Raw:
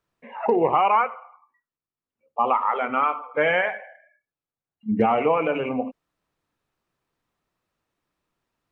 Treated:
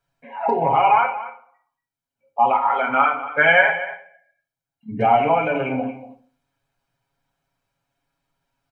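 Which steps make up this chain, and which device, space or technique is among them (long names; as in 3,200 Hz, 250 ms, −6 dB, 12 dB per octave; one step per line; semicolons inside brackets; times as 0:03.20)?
0:02.89–0:03.70: parametric band 1,400 Hz +6 dB 1.3 octaves
microphone above a desk (comb filter 1.3 ms, depth 51%; convolution reverb RT60 0.40 s, pre-delay 19 ms, DRR 6 dB)
comb filter 7.3 ms, depth 82%
single-tap delay 235 ms −14.5 dB
level −1 dB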